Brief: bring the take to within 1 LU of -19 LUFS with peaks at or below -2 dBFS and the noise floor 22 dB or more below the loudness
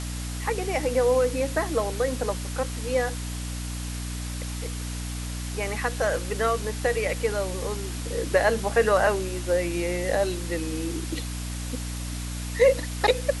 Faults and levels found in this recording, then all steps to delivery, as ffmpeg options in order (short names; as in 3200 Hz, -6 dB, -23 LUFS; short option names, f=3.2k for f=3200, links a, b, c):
hum 60 Hz; harmonics up to 300 Hz; hum level -30 dBFS; noise floor -32 dBFS; noise floor target -49 dBFS; loudness -26.5 LUFS; peak -7.0 dBFS; loudness target -19.0 LUFS
-> -af "bandreject=f=60:t=h:w=6,bandreject=f=120:t=h:w=6,bandreject=f=180:t=h:w=6,bandreject=f=240:t=h:w=6,bandreject=f=300:t=h:w=6"
-af "afftdn=nr=17:nf=-32"
-af "volume=7.5dB,alimiter=limit=-2dB:level=0:latency=1"